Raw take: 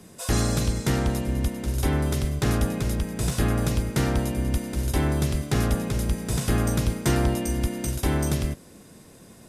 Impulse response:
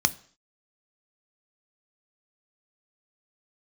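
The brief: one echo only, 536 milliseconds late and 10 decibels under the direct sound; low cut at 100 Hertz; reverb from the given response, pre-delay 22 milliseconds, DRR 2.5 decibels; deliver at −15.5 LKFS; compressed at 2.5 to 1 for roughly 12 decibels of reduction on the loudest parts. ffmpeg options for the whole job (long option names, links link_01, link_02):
-filter_complex "[0:a]highpass=100,acompressor=threshold=-39dB:ratio=2.5,aecho=1:1:536:0.316,asplit=2[link_01][link_02];[1:a]atrim=start_sample=2205,adelay=22[link_03];[link_02][link_03]afir=irnorm=-1:irlink=0,volume=-13.5dB[link_04];[link_01][link_04]amix=inputs=2:normalize=0,volume=19.5dB"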